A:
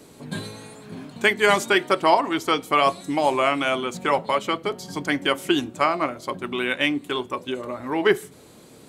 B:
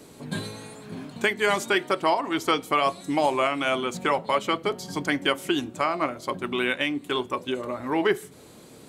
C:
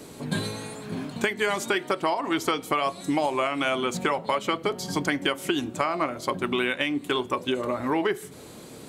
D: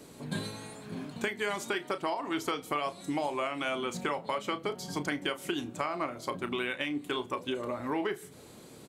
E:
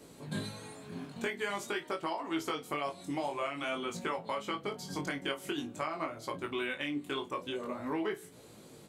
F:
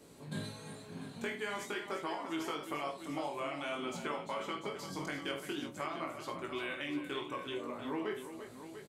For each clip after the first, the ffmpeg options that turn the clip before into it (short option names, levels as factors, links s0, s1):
-af "alimiter=limit=0.266:level=0:latency=1:release=307"
-af "acompressor=threshold=0.0501:ratio=6,volume=1.68"
-filter_complex "[0:a]asplit=2[s0][s1];[s1]adelay=34,volume=0.251[s2];[s0][s2]amix=inputs=2:normalize=0,volume=0.422"
-af "flanger=delay=18:depth=4:speed=0.48"
-af "aecho=1:1:47|78|346|694:0.355|0.237|0.299|0.266,volume=0.631"